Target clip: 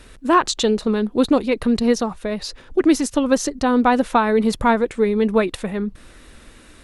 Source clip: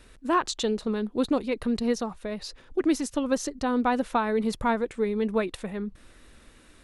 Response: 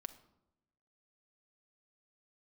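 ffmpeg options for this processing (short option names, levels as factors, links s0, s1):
-af "volume=2.66" -ar 48000 -c:a libopus -b:a 64k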